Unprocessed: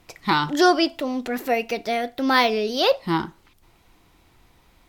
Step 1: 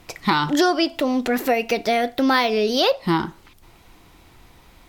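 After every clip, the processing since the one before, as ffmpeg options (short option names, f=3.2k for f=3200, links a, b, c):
-af "acompressor=threshold=-23dB:ratio=4,volume=7dB"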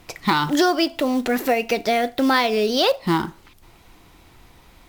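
-af "acrusher=bits=6:mode=log:mix=0:aa=0.000001"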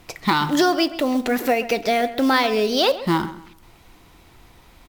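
-filter_complex "[0:a]asplit=2[a][b];[b]adelay=132,lowpass=f=2.7k:p=1,volume=-14dB,asplit=2[c][d];[d]adelay=132,lowpass=f=2.7k:p=1,volume=0.3,asplit=2[e][f];[f]adelay=132,lowpass=f=2.7k:p=1,volume=0.3[g];[a][c][e][g]amix=inputs=4:normalize=0"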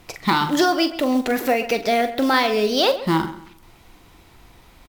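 -filter_complex "[0:a]asplit=2[a][b];[b]adelay=43,volume=-10.5dB[c];[a][c]amix=inputs=2:normalize=0"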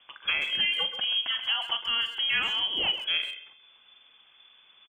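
-filter_complex "[0:a]lowpass=f=3k:t=q:w=0.5098,lowpass=f=3k:t=q:w=0.6013,lowpass=f=3k:t=q:w=0.9,lowpass=f=3k:t=q:w=2.563,afreqshift=-3500,asplit=2[a][b];[b]adelay=130,highpass=300,lowpass=3.4k,asoftclip=type=hard:threshold=-14.5dB,volume=-11dB[c];[a][c]amix=inputs=2:normalize=0,volume=-9dB"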